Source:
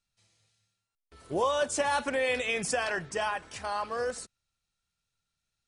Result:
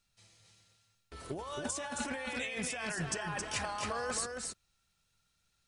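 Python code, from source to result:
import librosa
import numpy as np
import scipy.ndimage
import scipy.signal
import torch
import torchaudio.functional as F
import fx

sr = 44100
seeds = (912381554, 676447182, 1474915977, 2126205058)

p1 = fx.dynamic_eq(x, sr, hz=480.0, q=1.4, threshold_db=-40.0, ratio=4.0, max_db=-6)
p2 = fx.over_compress(p1, sr, threshold_db=-39.0, ratio=-1.0)
y = p2 + fx.echo_single(p2, sr, ms=270, db=-4.5, dry=0)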